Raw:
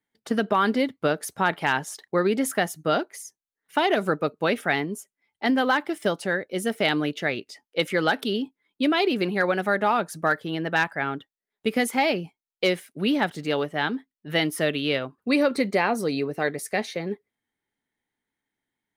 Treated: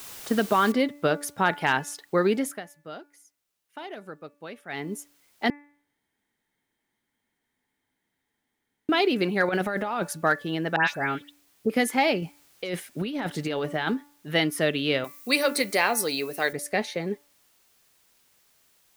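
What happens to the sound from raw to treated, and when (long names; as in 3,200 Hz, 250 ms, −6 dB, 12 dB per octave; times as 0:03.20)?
0:00.72: noise floor change −42 dB −64 dB
0:02.32–0:04.98: duck −17 dB, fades 0.30 s
0:05.50–0:08.89: fill with room tone
0:09.49–0:10.13: compressor whose output falls as the input rises −27 dBFS
0:10.76–0:11.70: all-pass dispersion highs, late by 123 ms, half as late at 2,600 Hz
0:12.22–0:13.94: compressor whose output falls as the input rises −28 dBFS
0:15.04–0:16.53: RIAA equalisation recording
whole clip: hum removal 289.3 Hz, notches 9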